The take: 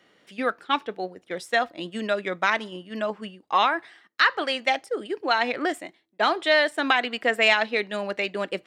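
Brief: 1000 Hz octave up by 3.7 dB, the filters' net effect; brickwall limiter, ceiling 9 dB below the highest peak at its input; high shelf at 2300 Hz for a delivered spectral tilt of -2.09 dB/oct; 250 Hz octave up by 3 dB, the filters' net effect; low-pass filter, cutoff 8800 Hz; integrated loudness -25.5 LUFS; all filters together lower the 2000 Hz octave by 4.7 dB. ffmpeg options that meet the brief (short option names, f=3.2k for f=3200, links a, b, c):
-af "lowpass=8.8k,equalizer=f=250:t=o:g=3.5,equalizer=f=1k:t=o:g=7,equalizer=f=2k:t=o:g=-7,highshelf=f=2.3k:g=-3,volume=1.5dB,alimiter=limit=-13dB:level=0:latency=1"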